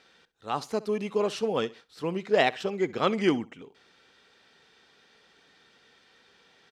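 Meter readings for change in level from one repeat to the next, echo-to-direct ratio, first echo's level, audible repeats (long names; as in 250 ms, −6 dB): −11.5 dB, −19.5 dB, −20.0 dB, 2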